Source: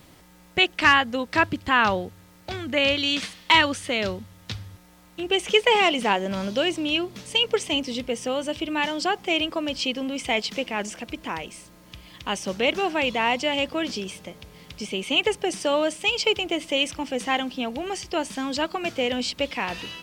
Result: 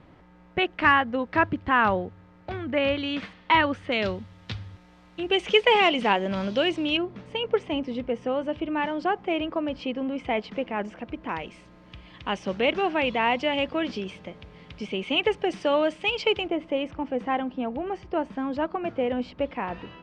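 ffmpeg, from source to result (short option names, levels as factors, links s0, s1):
-af "asetnsamples=n=441:p=0,asendcmd='3.92 lowpass f 3600;6.97 lowpass f 1600;11.29 lowpass f 2700;16.48 lowpass f 1300',lowpass=1800"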